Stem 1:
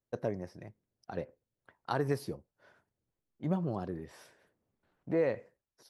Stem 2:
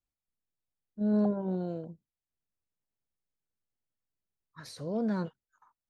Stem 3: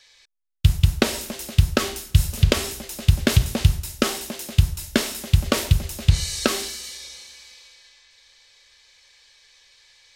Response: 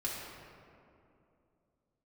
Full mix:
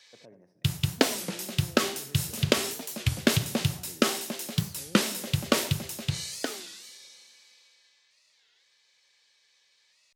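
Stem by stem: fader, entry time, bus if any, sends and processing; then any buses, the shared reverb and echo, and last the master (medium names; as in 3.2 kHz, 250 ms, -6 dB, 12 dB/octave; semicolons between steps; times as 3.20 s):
-14.0 dB, 0.00 s, bus A, send -23.5 dB, echo send -14.5 dB, none
-7.5 dB, 0.00 s, bus A, no send, no echo send, none
5.89 s -2.5 dB -> 6.52 s -11.5 dB, 0.00 s, no bus, no send, no echo send, none
bus A: 0.0 dB, gain riding within 4 dB; peak limiter -41.5 dBFS, peak gain reduction 13.5 dB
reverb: on, RT60 2.7 s, pre-delay 3 ms
echo: delay 78 ms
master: high-pass 130 Hz 24 dB/octave; warped record 33 1/3 rpm, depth 250 cents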